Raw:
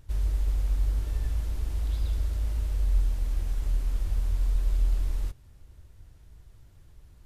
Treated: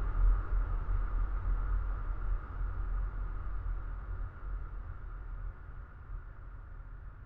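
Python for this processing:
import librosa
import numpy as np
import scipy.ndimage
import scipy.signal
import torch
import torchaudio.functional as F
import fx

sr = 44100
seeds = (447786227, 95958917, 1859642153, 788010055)

y = fx.filter_lfo_lowpass(x, sr, shape='saw_up', hz=0.34, low_hz=530.0, high_hz=1700.0, q=5.3)
y = fx.paulstretch(y, sr, seeds[0], factor=48.0, window_s=0.5, from_s=5.32)
y = F.gain(torch.from_numpy(y), 1.5).numpy()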